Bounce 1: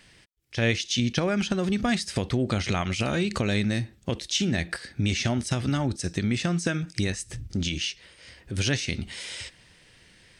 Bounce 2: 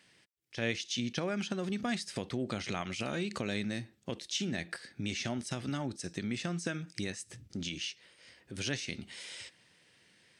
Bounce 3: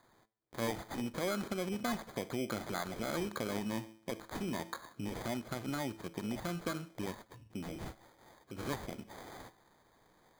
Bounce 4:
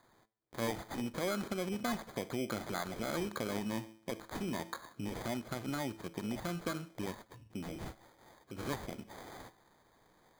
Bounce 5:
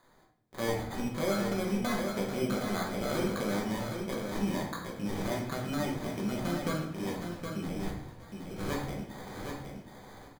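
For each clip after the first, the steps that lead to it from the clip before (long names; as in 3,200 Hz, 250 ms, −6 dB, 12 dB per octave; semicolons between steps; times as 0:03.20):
high-pass filter 150 Hz 12 dB per octave; level −8.5 dB
tuned comb filter 110 Hz, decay 0.57 s, harmonics all, mix 50%; mid-hump overdrive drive 12 dB, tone 1,000 Hz, clips at −22.5 dBFS; decimation without filtering 16×; level +4 dB
no processing that can be heard
repeating echo 767 ms, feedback 15%, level −6 dB; rectangular room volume 140 cubic metres, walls mixed, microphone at 1.1 metres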